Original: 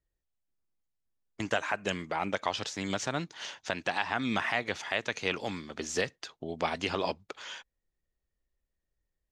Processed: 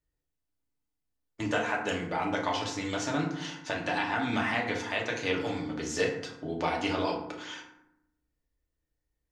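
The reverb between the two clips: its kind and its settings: FDN reverb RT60 0.8 s, low-frequency decay 1.55×, high-frequency decay 0.5×, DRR -2.5 dB; gain -3 dB

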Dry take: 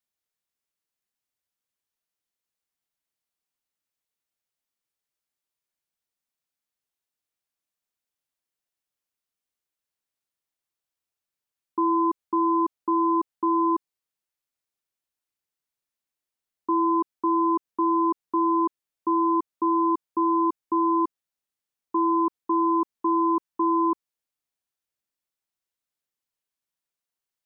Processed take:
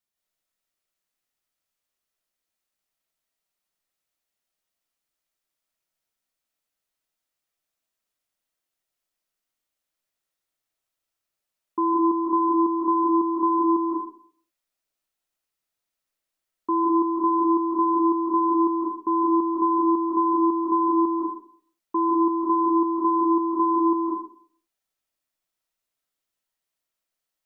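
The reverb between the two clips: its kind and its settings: digital reverb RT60 0.55 s, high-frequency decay 0.65×, pre-delay 0.12 s, DRR -3 dB

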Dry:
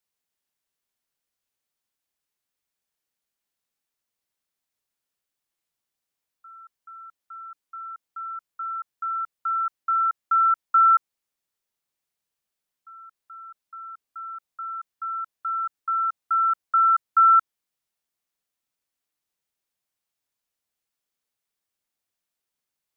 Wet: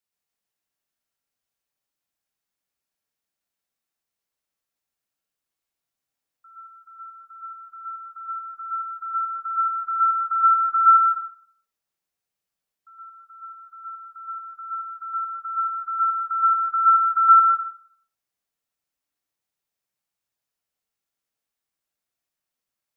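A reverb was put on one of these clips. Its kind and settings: plate-style reverb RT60 0.55 s, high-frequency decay 0.5×, pre-delay 0.105 s, DRR -1.5 dB; gain -4 dB

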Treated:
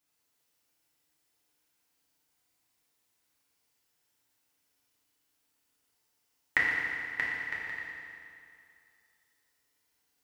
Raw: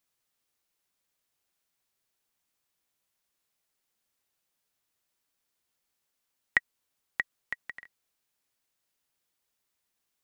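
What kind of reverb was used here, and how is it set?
FDN reverb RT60 2.5 s, low-frequency decay 1×, high-frequency decay 0.9×, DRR -7 dB; gain -3 dB

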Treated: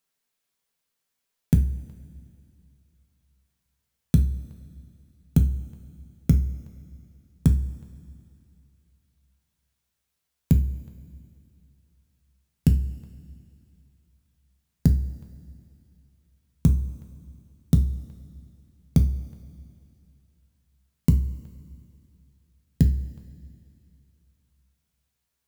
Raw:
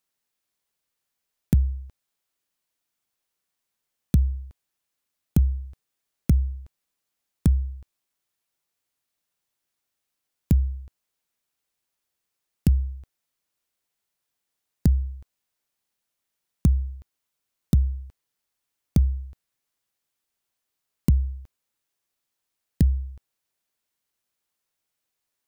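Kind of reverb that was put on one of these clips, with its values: two-slope reverb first 0.32 s, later 2.7 s, from -18 dB, DRR 4.5 dB

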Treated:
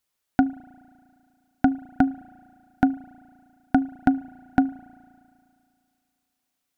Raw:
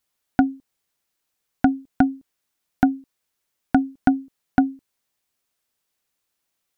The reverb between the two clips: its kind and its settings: spring tank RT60 2.4 s, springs 35 ms, chirp 65 ms, DRR 19 dB; gain -2 dB

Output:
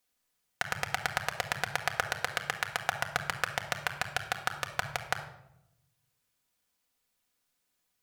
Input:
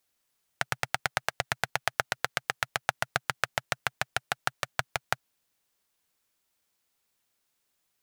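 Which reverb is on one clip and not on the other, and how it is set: shoebox room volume 2500 m³, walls furnished, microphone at 1.9 m; gain -3 dB

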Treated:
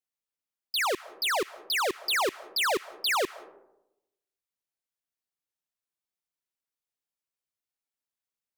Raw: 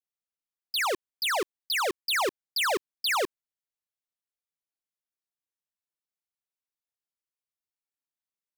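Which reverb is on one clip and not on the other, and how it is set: digital reverb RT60 0.9 s, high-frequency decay 0.35×, pre-delay 0.115 s, DRR 19 dB

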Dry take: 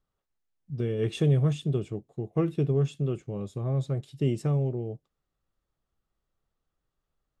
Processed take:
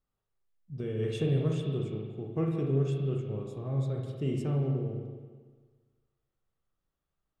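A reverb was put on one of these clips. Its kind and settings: spring tank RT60 1.5 s, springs 37/56 ms, chirp 25 ms, DRR 0 dB; gain -6 dB

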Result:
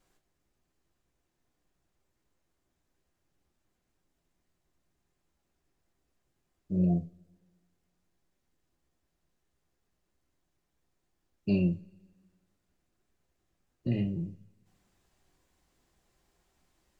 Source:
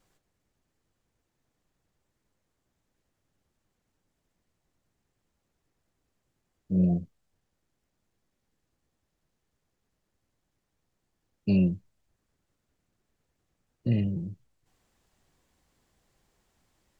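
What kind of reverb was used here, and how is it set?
two-slope reverb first 0.27 s, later 1.7 s, from -27 dB, DRR 5 dB; gain -2.5 dB

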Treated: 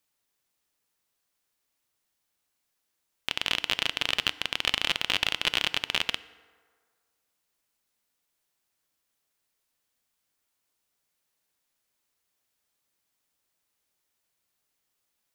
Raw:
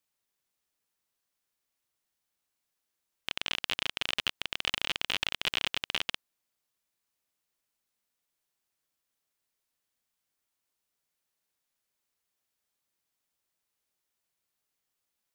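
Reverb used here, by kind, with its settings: FDN reverb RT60 1.8 s, low-frequency decay 0.7×, high-frequency decay 0.5×, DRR 15.5 dB; gain +4.5 dB

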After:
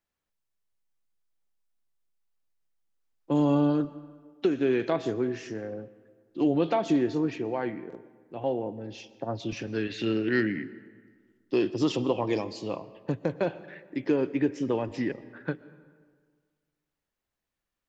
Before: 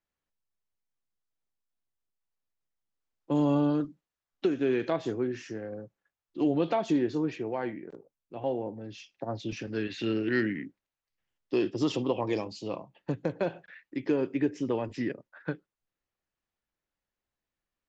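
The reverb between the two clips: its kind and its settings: digital reverb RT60 1.7 s, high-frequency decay 0.6×, pre-delay 85 ms, DRR 17.5 dB; gain +2 dB

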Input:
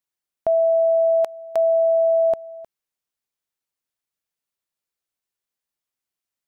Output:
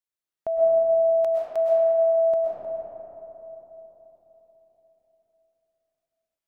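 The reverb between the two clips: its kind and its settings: digital reverb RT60 4.1 s, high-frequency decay 0.3×, pre-delay 85 ms, DRR -5 dB; gain -8 dB

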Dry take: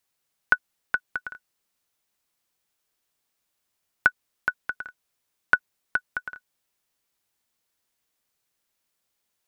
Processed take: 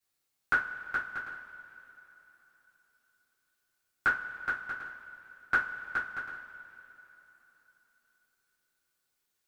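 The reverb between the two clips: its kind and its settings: two-slope reverb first 0.25 s, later 3.6 s, from -22 dB, DRR -9.5 dB; gain -13 dB

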